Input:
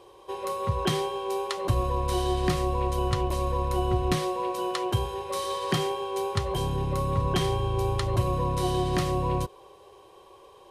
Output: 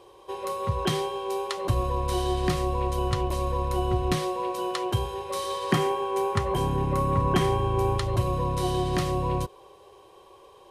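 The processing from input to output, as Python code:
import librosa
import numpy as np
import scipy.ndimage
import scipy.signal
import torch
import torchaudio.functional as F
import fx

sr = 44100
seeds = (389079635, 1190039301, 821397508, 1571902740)

y = fx.graphic_eq(x, sr, hz=(250, 1000, 2000, 4000), db=(7, 4, 4, -5), at=(5.72, 7.98))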